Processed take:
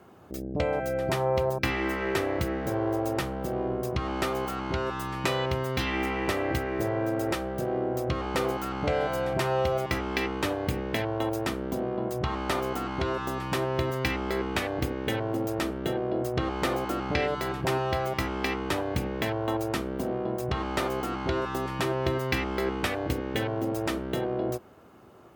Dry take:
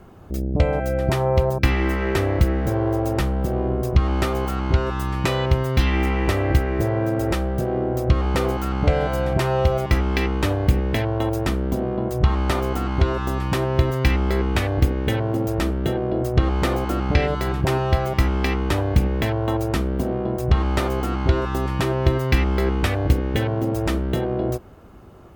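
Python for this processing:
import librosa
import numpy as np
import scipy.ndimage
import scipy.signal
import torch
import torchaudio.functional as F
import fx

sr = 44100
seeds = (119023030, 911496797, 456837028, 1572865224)

y = scipy.signal.sosfilt(scipy.signal.butter(2, 99.0, 'highpass', fs=sr, output='sos'), x)
y = fx.low_shelf(y, sr, hz=230.0, db=-6.5)
y = fx.hum_notches(y, sr, base_hz=50, count=4)
y = F.gain(torch.from_numpy(y), -3.5).numpy()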